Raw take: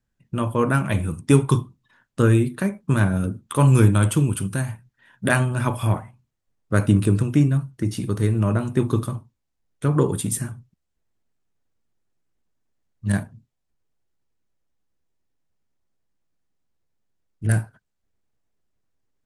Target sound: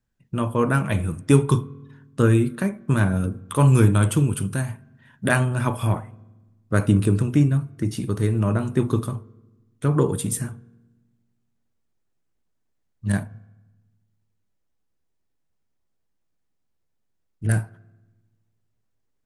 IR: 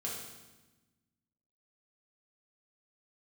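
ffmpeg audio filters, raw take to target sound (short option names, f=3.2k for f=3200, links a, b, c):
-filter_complex "[0:a]asplit=2[a][b];[1:a]atrim=start_sample=2205,lowpass=2.3k[c];[b][c]afir=irnorm=-1:irlink=0,volume=-19.5dB[d];[a][d]amix=inputs=2:normalize=0,volume=-1dB"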